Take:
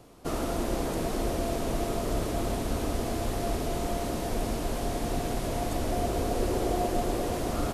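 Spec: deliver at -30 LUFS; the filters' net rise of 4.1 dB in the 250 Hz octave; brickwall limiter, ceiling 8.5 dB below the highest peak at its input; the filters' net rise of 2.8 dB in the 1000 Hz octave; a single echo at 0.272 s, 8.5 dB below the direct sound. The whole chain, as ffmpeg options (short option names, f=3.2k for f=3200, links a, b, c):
-af "equalizer=f=250:t=o:g=5,equalizer=f=1k:t=o:g=4,alimiter=limit=-22.5dB:level=0:latency=1,aecho=1:1:272:0.376,volume=1.5dB"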